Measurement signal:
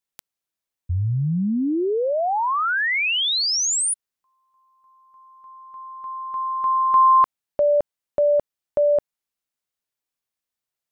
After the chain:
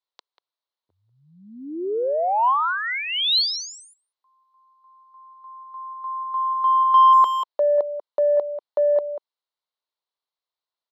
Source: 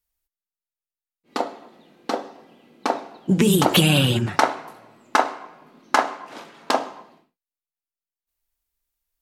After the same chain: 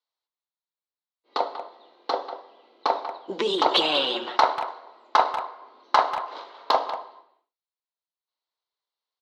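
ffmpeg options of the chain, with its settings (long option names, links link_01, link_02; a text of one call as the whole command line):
ffmpeg -i in.wav -filter_complex "[0:a]highpass=frequency=400:width=0.5412,highpass=frequency=400:width=1.3066,equalizer=frequency=1000:width_type=q:width=4:gain=6,equalizer=frequency=1700:width_type=q:width=4:gain=-6,equalizer=frequency=2500:width_type=q:width=4:gain=-8,equalizer=frequency=4100:width_type=q:width=4:gain=7,lowpass=frequency=4500:width=0.5412,lowpass=frequency=4500:width=1.3066,asplit=2[link_01][link_02];[link_02]adelay=190,highpass=300,lowpass=3400,asoftclip=type=hard:threshold=-9.5dB,volume=-11dB[link_03];[link_01][link_03]amix=inputs=2:normalize=0,acontrast=23,volume=-5.5dB" out.wav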